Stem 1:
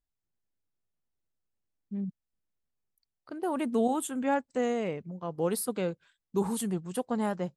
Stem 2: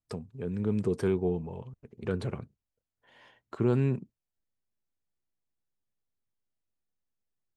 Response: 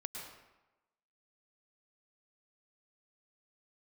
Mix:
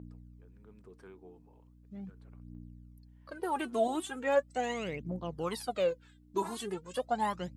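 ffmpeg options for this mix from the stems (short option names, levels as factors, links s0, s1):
-filter_complex "[0:a]aeval=exprs='val(0)+0.00562*(sin(2*PI*60*n/s)+sin(2*PI*2*60*n/s)/2+sin(2*PI*3*60*n/s)/3+sin(2*PI*4*60*n/s)/4+sin(2*PI*5*60*n/s)/5)':c=same,aphaser=in_gain=1:out_gain=1:delay=3.1:decay=0.76:speed=0.39:type=triangular,volume=0.891,asplit=2[s0][s1];[1:a]agate=range=0.0224:threshold=0.00141:ratio=3:detection=peak,equalizer=f=1300:w=0.89:g=7,volume=0.133[s2];[s1]apad=whole_len=333550[s3];[s2][s3]sidechaincompress=threshold=0.00447:ratio=8:attack=12:release=798[s4];[s0][s4]amix=inputs=2:normalize=0,highpass=f=120:p=1,acrossover=split=5500[s5][s6];[s6]acompressor=threshold=0.00251:ratio=4:attack=1:release=60[s7];[s5][s7]amix=inputs=2:normalize=0,lowshelf=f=250:g=-9"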